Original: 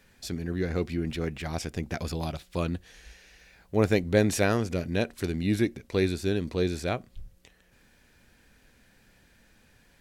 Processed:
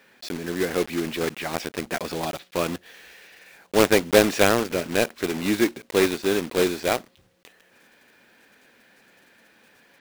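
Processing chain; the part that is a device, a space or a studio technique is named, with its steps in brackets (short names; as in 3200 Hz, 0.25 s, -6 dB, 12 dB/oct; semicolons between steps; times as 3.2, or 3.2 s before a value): early digital voice recorder (BPF 300–3800 Hz; block floating point 3-bit); gain +7.5 dB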